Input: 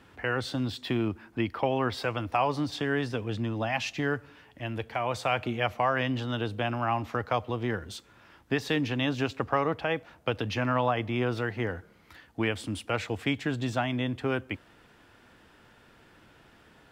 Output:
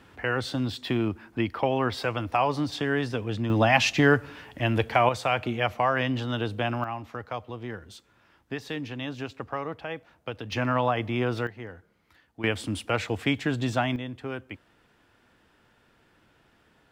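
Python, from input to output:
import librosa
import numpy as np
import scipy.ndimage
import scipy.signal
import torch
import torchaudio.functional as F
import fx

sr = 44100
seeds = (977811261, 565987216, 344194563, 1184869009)

y = fx.gain(x, sr, db=fx.steps((0.0, 2.0), (3.5, 9.5), (5.09, 2.0), (6.84, -6.0), (10.52, 1.5), (11.47, -9.0), (12.44, 3.0), (13.96, -5.5)))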